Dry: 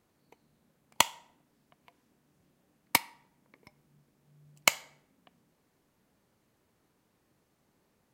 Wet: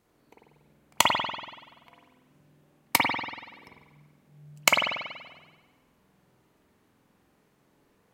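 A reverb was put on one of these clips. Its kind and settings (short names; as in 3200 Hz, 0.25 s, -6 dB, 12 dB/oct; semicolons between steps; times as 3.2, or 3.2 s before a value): spring tank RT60 1.2 s, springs 47 ms, chirp 40 ms, DRR -3 dB; gain +2 dB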